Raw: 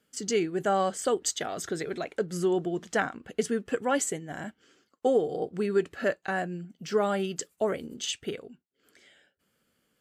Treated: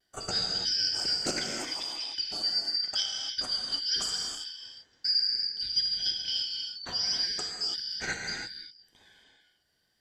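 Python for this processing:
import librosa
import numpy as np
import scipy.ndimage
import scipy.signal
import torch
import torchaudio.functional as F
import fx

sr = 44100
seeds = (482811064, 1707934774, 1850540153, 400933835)

y = fx.band_shuffle(x, sr, order='4321')
y = fx.high_shelf(y, sr, hz=2500.0, db=-11.5)
y = fx.vibrato(y, sr, rate_hz=0.72, depth_cents=29.0)
y = fx.rev_gated(y, sr, seeds[0], gate_ms=360, shape='flat', drr_db=-0.5)
y = fx.doppler_dist(y, sr, depth_ms=0.1)
y = F.gain(torch.from_numpy(y), 3.5).numpy()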